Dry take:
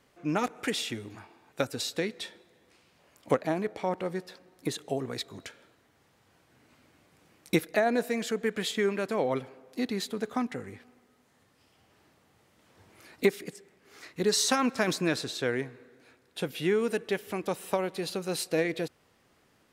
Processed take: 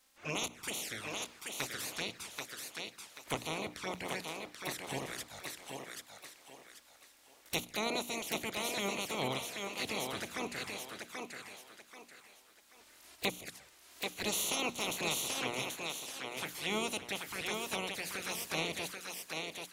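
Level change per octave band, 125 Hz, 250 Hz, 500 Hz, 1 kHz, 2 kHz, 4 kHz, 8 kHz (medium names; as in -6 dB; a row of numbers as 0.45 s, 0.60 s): -9.0 dB, -11.5 dB, -11.5 dB, -5.5 dB, -3.0 dB, -1.5 dB, -1.0 dB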